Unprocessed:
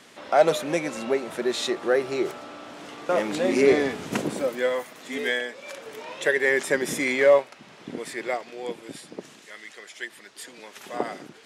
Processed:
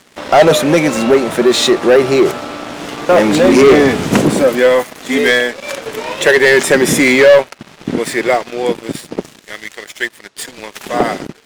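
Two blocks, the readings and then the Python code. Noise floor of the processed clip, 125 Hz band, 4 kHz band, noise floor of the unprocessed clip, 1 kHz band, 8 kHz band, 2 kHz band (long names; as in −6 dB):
−45 dBFS, +18.5 dB, +15.5 dB, −50 dBFS, +13.0 dB, +15.0 dB, +13.0 dB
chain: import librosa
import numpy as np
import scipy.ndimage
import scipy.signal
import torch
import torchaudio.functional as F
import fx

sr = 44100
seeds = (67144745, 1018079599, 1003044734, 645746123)

y = fx.low_shelf(x, sr, hz=210.0, db=7.0)
y = fx.leveller(y, sr, passes=3)
y = y * librosa.db_to_amplitude(4.5)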